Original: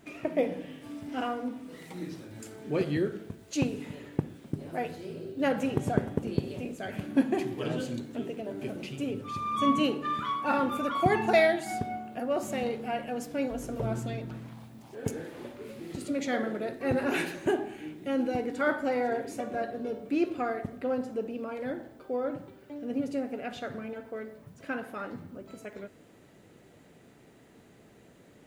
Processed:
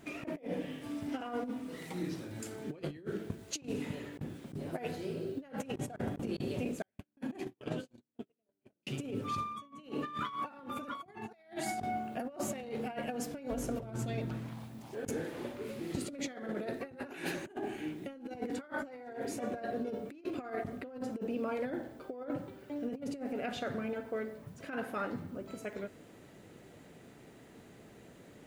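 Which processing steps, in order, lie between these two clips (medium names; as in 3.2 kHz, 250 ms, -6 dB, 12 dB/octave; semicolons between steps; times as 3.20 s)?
6.82–8.87 s: gate -29 dBFS, range -51 dB; compressor with a negative ratio -35 dBFS, ratio -0.5; trim -3 dB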